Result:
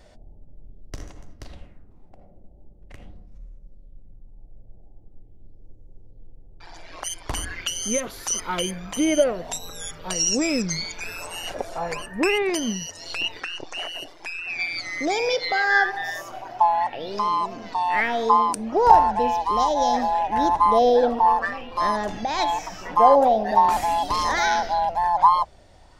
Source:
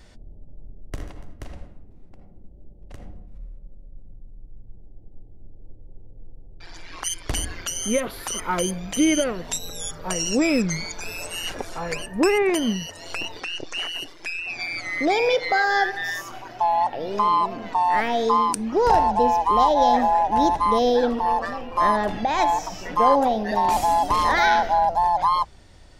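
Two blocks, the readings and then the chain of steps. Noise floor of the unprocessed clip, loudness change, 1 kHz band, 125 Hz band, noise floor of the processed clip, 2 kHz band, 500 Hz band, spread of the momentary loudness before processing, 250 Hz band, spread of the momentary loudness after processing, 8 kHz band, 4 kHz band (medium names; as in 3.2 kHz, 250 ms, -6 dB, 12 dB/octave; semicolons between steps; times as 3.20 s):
-46 dBFS, 0.0 dB, 0.0 dB, -3.5 dB, -49 dBFS, +0.5 dB, 0.0 dB, 13 LU, -3.0 dB, 14 LU, +1.0 dB, +0.5 dB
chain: sweeping bell 0.43 Hz 610–6500 Hz +11 dB; trim -3.5 dB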